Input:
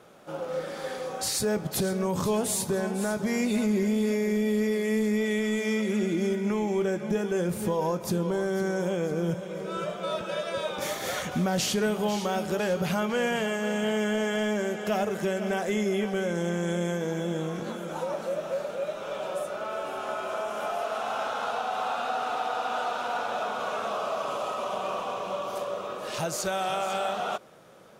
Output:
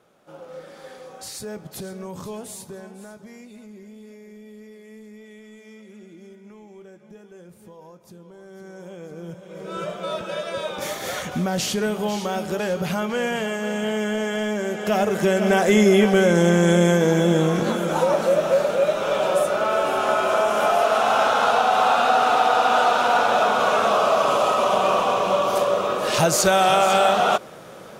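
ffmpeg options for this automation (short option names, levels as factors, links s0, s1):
-af "volume=14.1,afade=t=out:st=2.16:d=1.33:silence=0.281838,afade=t=in:st=8.35:d=1.08:silence=0.281838,afade=t=in:st=9.43:d=0.38:silence=0.334965,afade=t=in:st=14.61:d=1.24:silence=0.334965"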